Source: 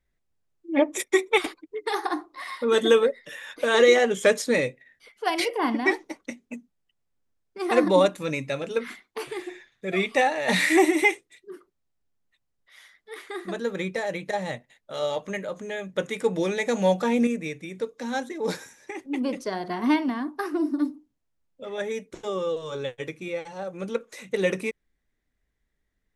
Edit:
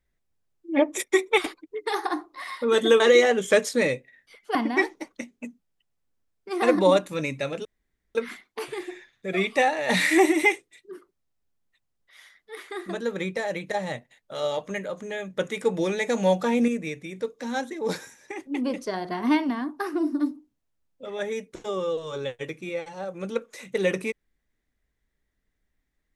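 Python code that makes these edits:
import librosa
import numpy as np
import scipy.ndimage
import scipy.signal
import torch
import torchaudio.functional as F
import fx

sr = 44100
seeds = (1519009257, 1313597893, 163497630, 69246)

y = fx.edit(x, sr, fx.cut(start_s=3.0, length_s=0.73),
    fx.cut(start_s=5.28, length_s=0.36),
    fx.insert_room_tone(at_s=8.74, length_s=0.5), tone=tone)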